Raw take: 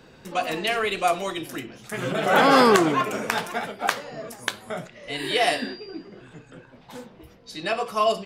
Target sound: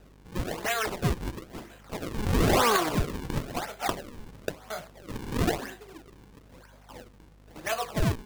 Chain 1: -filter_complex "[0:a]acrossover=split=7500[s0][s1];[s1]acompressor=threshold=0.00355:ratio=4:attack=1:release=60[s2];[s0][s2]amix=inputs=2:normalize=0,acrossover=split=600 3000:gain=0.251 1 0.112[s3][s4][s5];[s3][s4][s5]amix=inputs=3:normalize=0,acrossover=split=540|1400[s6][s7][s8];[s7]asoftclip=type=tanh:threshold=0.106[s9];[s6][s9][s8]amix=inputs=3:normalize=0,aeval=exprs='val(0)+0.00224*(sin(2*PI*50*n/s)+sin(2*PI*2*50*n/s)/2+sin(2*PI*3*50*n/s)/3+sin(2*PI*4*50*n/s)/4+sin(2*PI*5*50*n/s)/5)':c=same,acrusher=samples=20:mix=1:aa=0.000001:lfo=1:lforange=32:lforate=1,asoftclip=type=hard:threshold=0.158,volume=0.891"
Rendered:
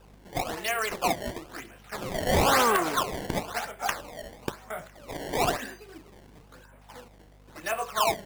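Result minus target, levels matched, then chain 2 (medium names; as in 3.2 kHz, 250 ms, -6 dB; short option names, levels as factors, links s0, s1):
decimation with a swept rate: distortion -7 dB
-filter_complex "[0:a]acrossover=split=7500[s0][s1];[s1]acompressor=threshold=0.00355:ratio=4:attack=1:release=60[s2];[s0][s2]amix=inputs=2:normalize=0,acrossover=split=600 3000:gain=0.251 1 0.112[s3][s4][s5];[s3][s4][s5]amix=inputs=3:normalize=0,acrossover=split=540|1400[s6][s7][s8];[s7]asoftclip=type=tanh:threshold=0.106[s9];[s6][s9][s8]amix=inputs=3:normalize=0,aeval=exprs='val(0)+0.00224*(sin(2*PI*50*n/s)+sin(2*PI*2*50*n/s)/2+sin(2*PI*3*50*n/s)/3+sin(2*PI*4*50*n/s)/4+sin(2*PI*5*50*n/s)/5)':c=same,acrusher=samples=39:mix=1:aa=0.000001:lfo=1:lforange=62.4:lforate=1,asoftclip=type=hard:threshold=0.158,volume=0.891"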